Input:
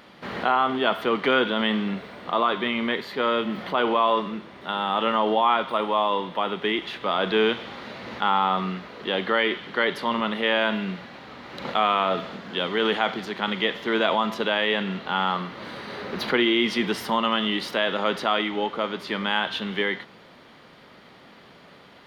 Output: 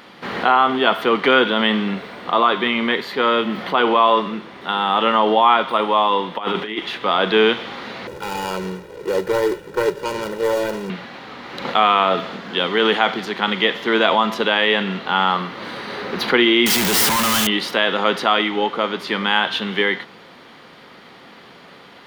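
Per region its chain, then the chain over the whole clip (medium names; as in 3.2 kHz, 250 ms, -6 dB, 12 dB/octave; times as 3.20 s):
6.38–6.78 s: compressor with a negative ratio -29 dBFS, ratio -0.5 + doubling 37 ms -11 dB
8.07–10.90 s: median filter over 41 samples + comb 2.1 ms, depth 88%
16.66–17.47 s: one-bit comparator + treble shelf 7.8 kHz +6 dB
whole clip: bass shelf 130 Hz -8.5 dB; band-stop 610 Hz, Q 12; trim +7 dB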